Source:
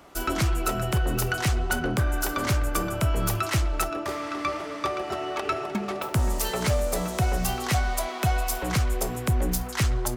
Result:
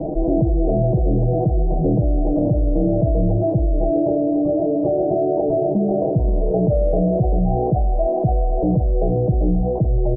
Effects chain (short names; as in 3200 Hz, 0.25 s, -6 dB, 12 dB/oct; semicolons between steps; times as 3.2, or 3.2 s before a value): steep low-pass 720 Hz 72 dB/oct; comb 6.3 ms, depth 98%; fast leveller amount 70%; gain +2.5 dB